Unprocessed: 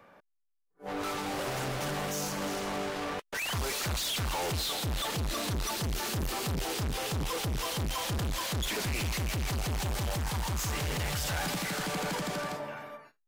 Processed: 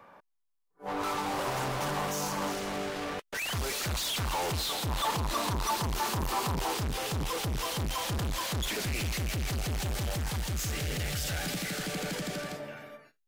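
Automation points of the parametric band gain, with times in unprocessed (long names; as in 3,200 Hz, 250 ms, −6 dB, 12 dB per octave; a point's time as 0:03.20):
parametric band 980 Hz 0.6 octaves
+7.5 dB
from 0:02.52 −2.5 dB
from 0:03.95 +3.5 dB
from 0:04.89 +11.5 dB
from 0:06.77 +1.5 dB
from 0:08.72 −5 dB
from 0:10.36 −12 dB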